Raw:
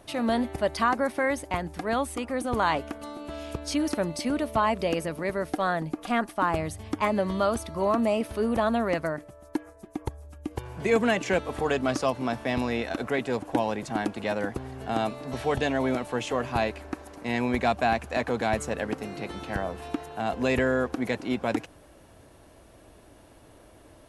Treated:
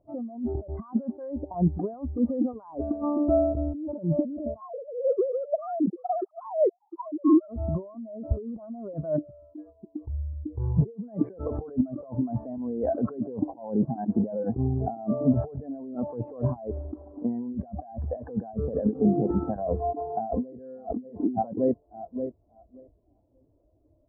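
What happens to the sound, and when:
0:04.61–0:07.48: three sine waves on the formant tracks
0:19.78–0:20.57: delay throw 580 ms, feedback 40%, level −0.5 dB
whole clip: low-pass filter 1,400 Hz 24 dB per octave; compressor whose output falls as the input rises −35 dBFS, ratio −1; every bin expanded away from the loudest bin 2.5 to 1; level +7 dB

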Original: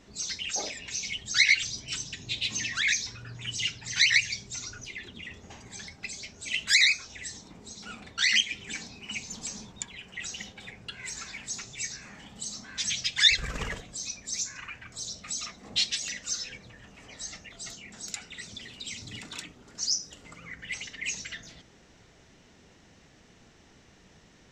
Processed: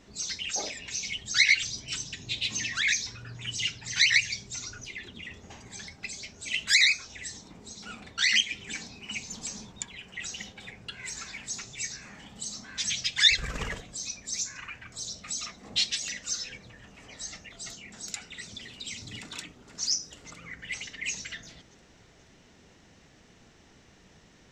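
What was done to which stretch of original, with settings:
0:19.21–0:19.82: delay throw 480 ms, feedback 55%, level −12 dB

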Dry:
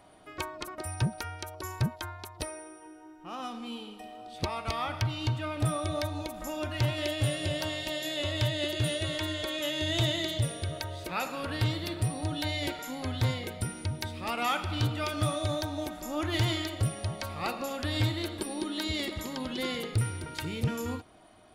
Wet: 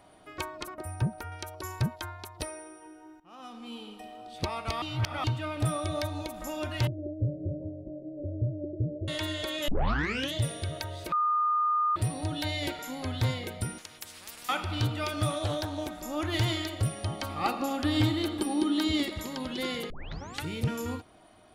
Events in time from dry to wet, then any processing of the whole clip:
0:00.74–0:01.32: parametric band 4,800 Hz −11.5 dB 2.3 octaves
0:03.20–0:03.93: fade in linear, from −17.5 dB
0:04.82–0:05.24: reverse
0:06.87–0:09.08: Butterworth low-pass 550 Hz 48 dB per octave
0:09.68: tape start 0.66 s
0:11.12–0:11.96: beep over 1,220 Hz −23 dBFS
0:13.78–0:14.49: every bin compressed towards the loudest bin 10 to 1
0:15.30–0:15.98: highs frequency-modulated by the lows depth 0.33 ms
0:17.04–0:19.03: hollow resonant body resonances 290/800/1,200/3,100 Hz, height 10 dB
0:19.90: tape start 0.54 s

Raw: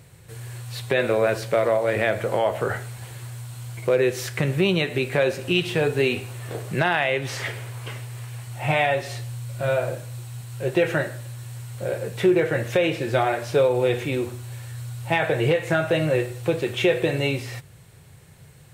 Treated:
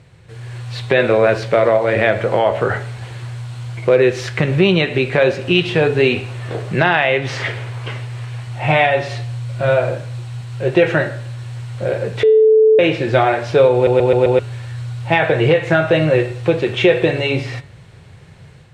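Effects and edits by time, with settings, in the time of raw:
0:12.23–0:12.79: beep over 437 Hz −14.5 dBFS
0:13.74: stutter in place 0.13 s, 5 plays
whole clip: low-pass filter 4,500 Hz 12 dB per octave; hum removal 141.4 Hz, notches 31; automatic gain control gain up to 5 dB; level +3 dB

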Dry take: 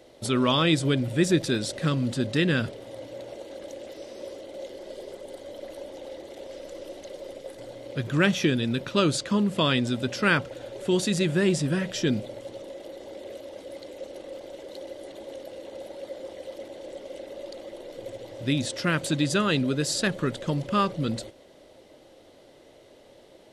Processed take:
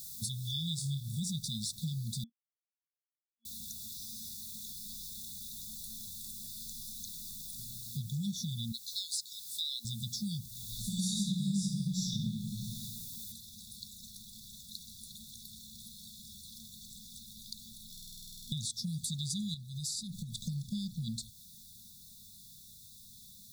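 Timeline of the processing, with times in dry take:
0:00.76–0:01.20: flutter between parallel walls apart 4.8 metres, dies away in 0.31 s
0:02.24–0:03.45: silence
0:04.93–0:06.66: reverse
0:08.72–0:09.85: frequency shifter +380 Hz
0:10.65–0:12.81: thrown reverb, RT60 1.3 s, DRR −10.5 dB
0:13.32: noise floor change −53 dB −63 dB
0:17.92: stutter in place 0.05 s, 12 plays
0:19.54–0:20.40: downward compressor, threshold −31 dBFS
whole clip: brick-wall band-stop 230–3,400 Hz; high-shelf EQ 5,100 Hz +7.5 dB; downward compressor 3 to 1, threshold −39 dBFS; level +1.5 dB

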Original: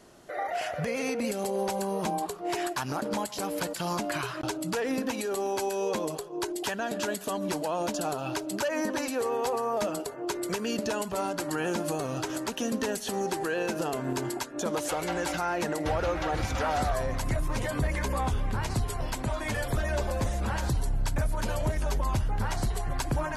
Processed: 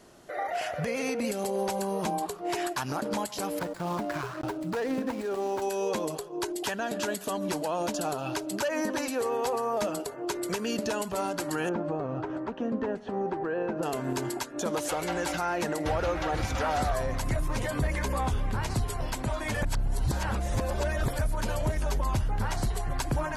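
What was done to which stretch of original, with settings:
0:03.59–0:05.62: running median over 15 samples
0:11.69–0:13.83: low-pass filter 1,300 Hz
0:19.62–0:21.19: reverse

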